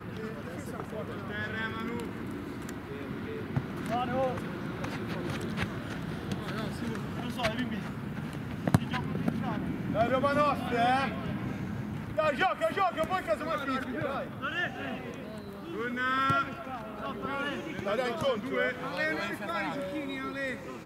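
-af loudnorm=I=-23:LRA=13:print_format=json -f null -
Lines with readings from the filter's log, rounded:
"input_i" : "-32.5",
"input_tp" : "-7.6",
"input_lra" : "5.4",
"input_thresh" : "-42.5",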